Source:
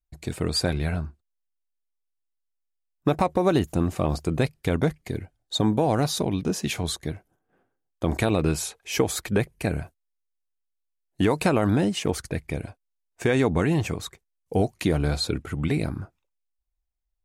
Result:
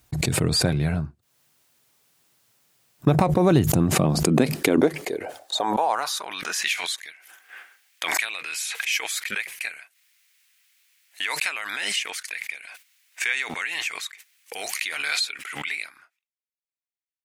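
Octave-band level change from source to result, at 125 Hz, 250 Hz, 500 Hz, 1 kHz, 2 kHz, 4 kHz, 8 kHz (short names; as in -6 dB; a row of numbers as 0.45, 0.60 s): -0.5, -1.0, -2.0, +2.0, +7.5, +5.0, +5.5 dB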